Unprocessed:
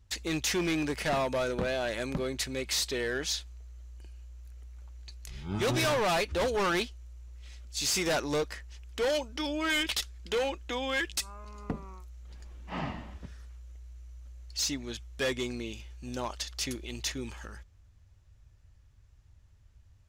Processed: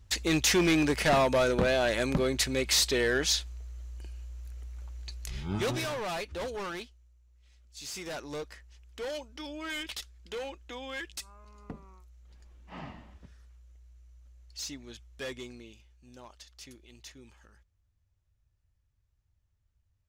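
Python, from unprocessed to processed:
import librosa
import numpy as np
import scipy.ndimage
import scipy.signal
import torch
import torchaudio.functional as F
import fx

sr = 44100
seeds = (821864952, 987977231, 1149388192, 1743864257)

y = fx.gain(x, sr, db=fx.line((5.38, 5.0), (5.88, -7.0), (6.5, -7.0), (7.23, -16.0), (8.41, -8.0), (15.34, -8.0), (15.95, -15.0)))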